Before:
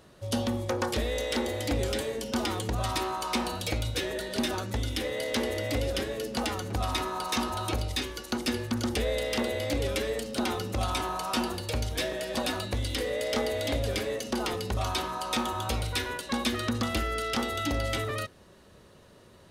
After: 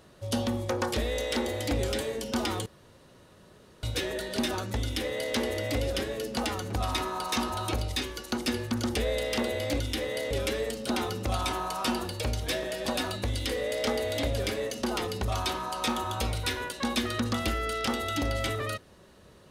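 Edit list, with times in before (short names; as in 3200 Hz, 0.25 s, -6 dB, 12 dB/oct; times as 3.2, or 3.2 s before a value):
2.66–3.83 room tone
4.83–5.34 copy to 9.8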